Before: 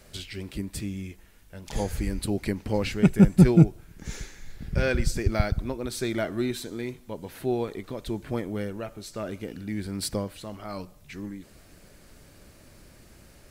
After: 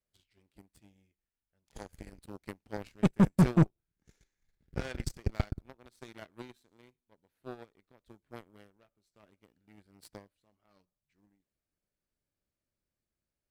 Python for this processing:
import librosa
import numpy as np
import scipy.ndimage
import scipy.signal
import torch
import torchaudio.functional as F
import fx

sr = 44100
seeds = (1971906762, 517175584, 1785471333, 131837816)

y = fx.cheby_harmonics(x, sr, harmonics=(7,), levels_db=(-17,), full_scale_db=-2.0)
y = 10.0 ** (-15.0 / 20.0) * np.tanh(y / 10.0 ** (-15.0 / 20.0))